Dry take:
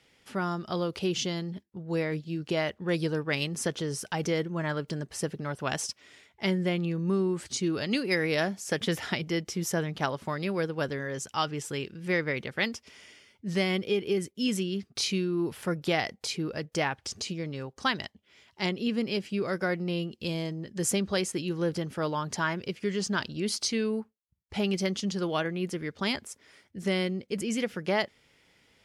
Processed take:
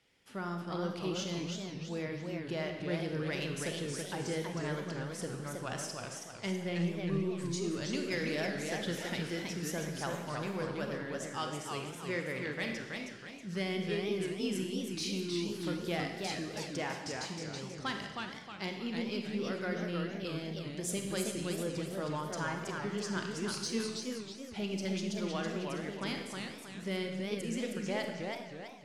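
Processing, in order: saturation -17.5 dBFS, distortion -23 dB; reverberation RT60 1.2 s, pre-delay 31 ms, DRR 4.5 dB; modulated delay 321 ms, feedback 42%, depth 204 cents, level -4 dB; trim -8.5 dB

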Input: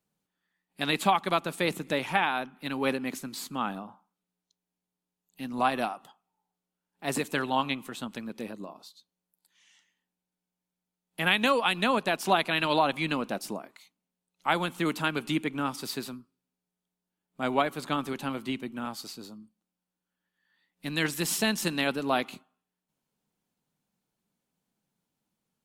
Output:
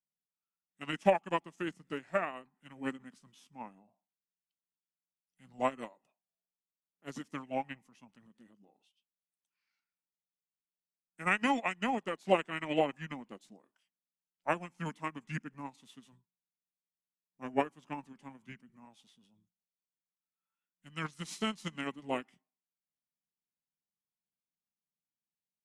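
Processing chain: formant shift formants -5 st; upward expansion 2.5:1, over -35 dBFS

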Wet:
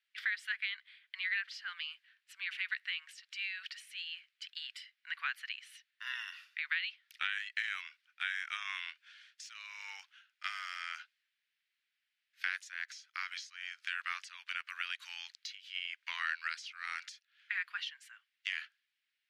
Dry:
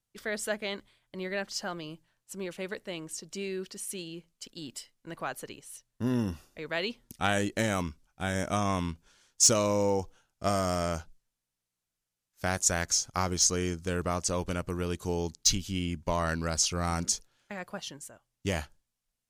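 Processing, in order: steep high-pass 1.7 kHz 36 dB/octave; compression 6:1, threshold -44 dBFS, peak gain reduction 24.5 dB; distance through air 400 m; trim +16.5 dB

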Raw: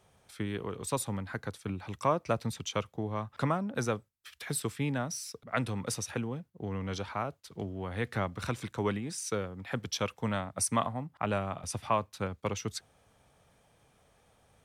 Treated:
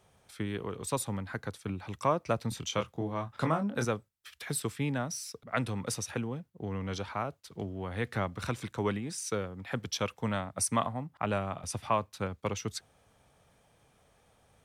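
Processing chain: 2.49–3.85 s: doubling 25 ms -5.5 dB

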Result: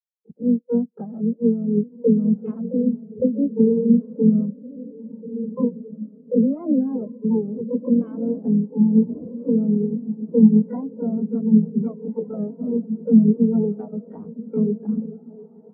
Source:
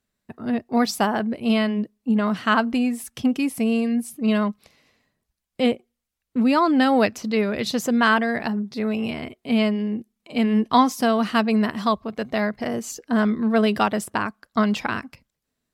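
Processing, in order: local Wiener filter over 25 samples; harmony voices -4 st -8 dB, +12 st -3 dB; in parallel at -8 dB: crossover distortion -28.5 dBFS; on the sum: compression 10:1, threshold -26 dBFS, peak gain reduction 19.5 dB; tilt shelf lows +9.5 dB, about 1.2 kHz; echo that smears into a reverb 1534 ms, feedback 56%, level -5 dB; on a send at -20.5 dB: reverberation RT60 3.4 s, pre-delay 7 ms; on the sum: spectral contrast expander 2.5:1; trim +5.5 dB

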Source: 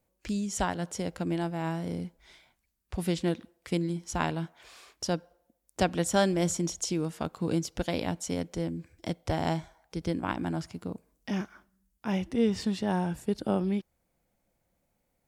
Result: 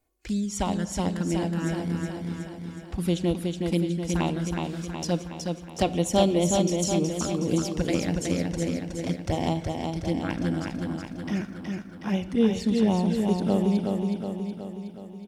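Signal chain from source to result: touch-sensitive flanger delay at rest 2.8 ms, full sweep at -24.5 dBFS; feedback delay 369 ms, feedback 58%, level -4 dB; on a send at -13.5 dB: reverberation, pre-delay 4 ms; on the sum: trim +4 dB

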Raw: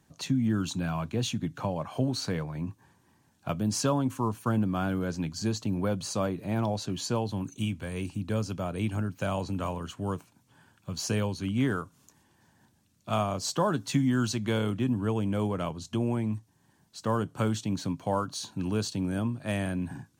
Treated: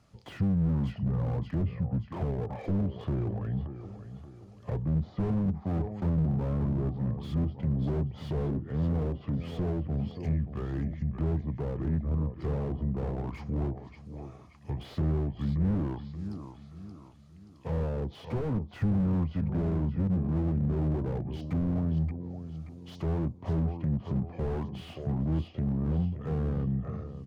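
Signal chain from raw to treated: speed mistake 45 rpm record played at 33 rpm; treble shelf 5 kHz -8 dB; in parallel at -10 dB: saturation -27.5 dBFS, distortion -10 dB; on the sum: low-pass that closes with the level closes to 670 Hz, closed at -26.5 dBFS; on a send: feedback delay 578 ms, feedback 41%, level -12.5 dB; on the sum: slew-rate limiter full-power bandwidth 11 Hz

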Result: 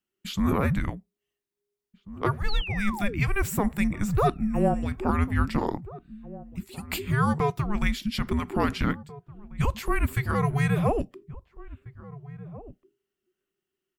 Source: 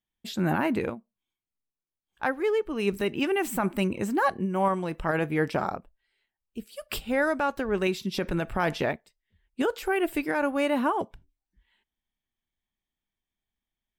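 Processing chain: painted sound fall, 2.48–3.44 s, 340–5100 Hz -38 dBFS; echo from a far wall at 290 m, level -16 dB; frequency shift -410 Hz; trim +2 dB

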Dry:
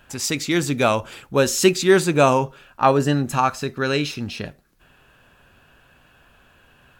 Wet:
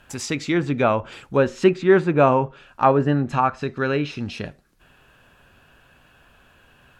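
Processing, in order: low-pass that closes with the level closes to 2.1 kHz, closed at -16.5 dBFS; dynamic bell 4.7 kHz, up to -4 dB, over -42 dBFS, Q 1.1

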